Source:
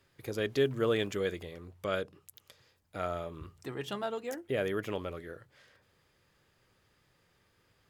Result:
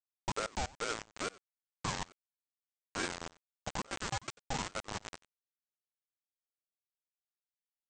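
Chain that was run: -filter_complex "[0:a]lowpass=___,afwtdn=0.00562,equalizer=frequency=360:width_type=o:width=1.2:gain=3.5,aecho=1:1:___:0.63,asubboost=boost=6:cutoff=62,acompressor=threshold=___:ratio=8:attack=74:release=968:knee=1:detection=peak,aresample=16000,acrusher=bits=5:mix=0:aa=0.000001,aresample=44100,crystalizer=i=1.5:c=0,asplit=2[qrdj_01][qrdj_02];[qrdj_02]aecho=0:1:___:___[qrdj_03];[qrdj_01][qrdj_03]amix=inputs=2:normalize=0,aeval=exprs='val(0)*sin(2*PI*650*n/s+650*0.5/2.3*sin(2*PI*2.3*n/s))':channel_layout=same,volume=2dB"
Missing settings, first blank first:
1200, 6.6, -38dB, 92, 0.0841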